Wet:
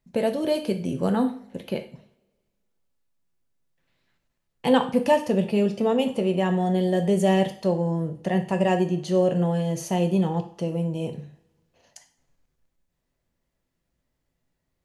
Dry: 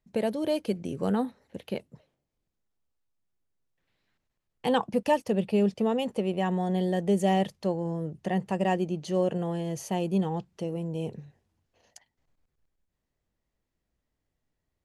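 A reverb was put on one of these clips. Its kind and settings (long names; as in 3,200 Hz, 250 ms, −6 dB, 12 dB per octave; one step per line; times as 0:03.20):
coupled-rooms reverb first 0.44 s, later 1.7 s, from −27 dB, DRR 5 dB
level +3.5 dB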